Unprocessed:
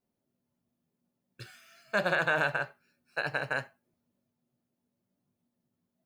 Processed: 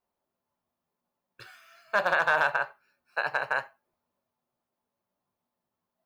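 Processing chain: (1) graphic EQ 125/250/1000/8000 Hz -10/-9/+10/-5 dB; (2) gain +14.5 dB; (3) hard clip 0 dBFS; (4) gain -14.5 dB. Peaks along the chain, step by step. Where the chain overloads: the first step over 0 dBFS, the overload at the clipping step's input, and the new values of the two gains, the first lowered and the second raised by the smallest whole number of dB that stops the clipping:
-10.5, +4.0, 0.0, -14.5 dBFS; step 2, 4.0 dB; step 2 +10.5 dB, step 4 -10.5 dB

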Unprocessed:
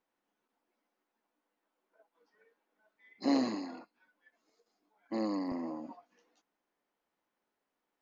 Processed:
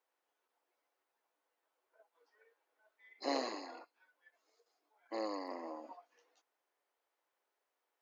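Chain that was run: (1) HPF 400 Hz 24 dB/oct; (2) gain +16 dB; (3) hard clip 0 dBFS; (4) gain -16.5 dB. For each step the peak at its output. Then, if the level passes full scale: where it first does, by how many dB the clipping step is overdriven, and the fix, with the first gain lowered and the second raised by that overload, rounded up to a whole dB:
-21.5, -5.5, -5.5, -22.0 dBFS; no overload

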